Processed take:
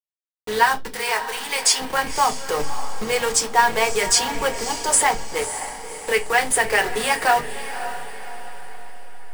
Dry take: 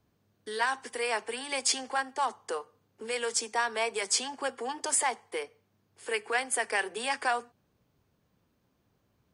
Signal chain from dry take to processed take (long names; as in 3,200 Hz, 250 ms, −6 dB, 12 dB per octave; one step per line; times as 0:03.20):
hold until the input has moved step −35.5 dBFS
0:00.94–0:01.80: high-pass filter 1,100 Hz 6 dB per octave
0:02.59–0:03.04: leveller curve on the samples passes 2
0:04.64–0:05.38: noise gate −34 dBFS, range −6 dB
feedback delay with all-pass diffusion 562 ms, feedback 46%, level −11 dB
convolution reverb RT60 0.25 s, pre-delay 4 ms, DRR 3 dB
level +8.5 dB